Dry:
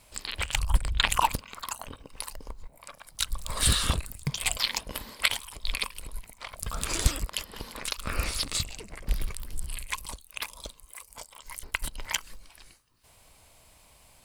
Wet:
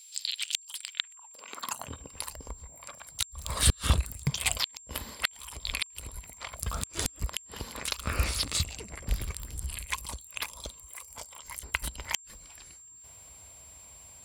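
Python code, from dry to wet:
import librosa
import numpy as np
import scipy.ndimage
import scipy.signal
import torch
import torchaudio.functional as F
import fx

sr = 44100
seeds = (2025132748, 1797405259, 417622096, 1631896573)

y = fx.filter_sweep_highpass(x, sr, from_hz=3800.0, to_hz=63.0, start_s=0.79, end_s=2.01, q=1.9)
y = fx.gate_flip(y, sr, shuts_db=-9.0, range_db=-41)
y = y + 10.0 ** (-49.0 / 20.0) * np.sin(2.0 * np.pi * 7400.0 * np.arange(len(y)) / sr)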